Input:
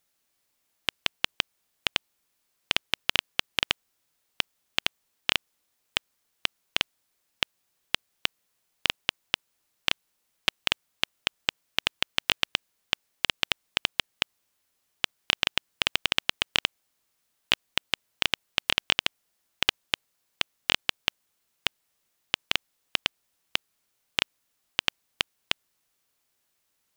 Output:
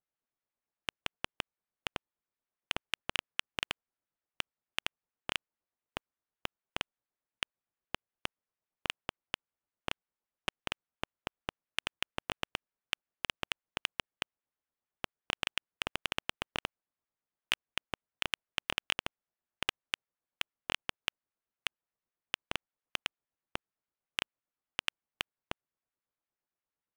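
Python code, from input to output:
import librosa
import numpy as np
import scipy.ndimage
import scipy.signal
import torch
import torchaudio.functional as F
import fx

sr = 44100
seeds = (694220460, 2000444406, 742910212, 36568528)

y = scipy.signal.sosfilt(scipy.signal.butter(2, 1800.0, 'lowpass', fs=sr, output='sos'), x)
y = fx.leveller(y, sr, passes=3)
y = fx.harmonic_tremolo(y, sr, hz=8.7, depth_pct=70, crossover_hz=1300.0)
y = y * 10.0 ** (-4.0 / 20.0)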